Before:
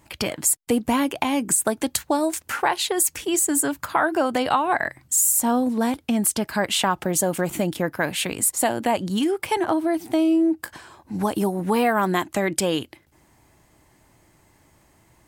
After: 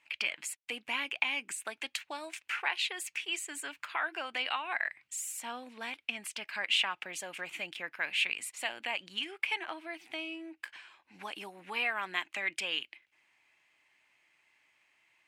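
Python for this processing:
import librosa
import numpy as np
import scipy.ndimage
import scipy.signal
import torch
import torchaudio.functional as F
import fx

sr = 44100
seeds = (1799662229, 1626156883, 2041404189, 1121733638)

y = fx.bandpass_q(x, sr, hz=2500.0, q=3.7)
y = y * 10.0 ** (2.5 / 20.0)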